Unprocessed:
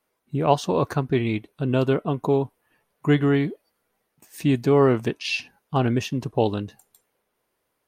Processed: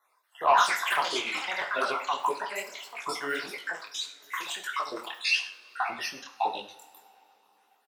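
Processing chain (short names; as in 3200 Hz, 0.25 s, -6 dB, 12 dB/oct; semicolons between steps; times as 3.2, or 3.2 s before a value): random spectral dropouts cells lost 60%; in parallel at -1 dB: compressor, threshold -33 dBFS, peak gain reduction 17.5 dB; on the sum: resonant high-pass 1000 Hz, resonance Q 1.8; sine folder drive 6 dB, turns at -3 dBFS; on a send: echo 0.101 s -17 dB; on the sum: echoes that change speed 0.234 s, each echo +6 st, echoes 3; 2.29–4.43 high shelf 4400 Hz -8 dB; two-slope reverb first 0.48 s, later 4 s, from -22 dB, DRR 6 dB; detuned doubles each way 58 cents; gain -6.5 dB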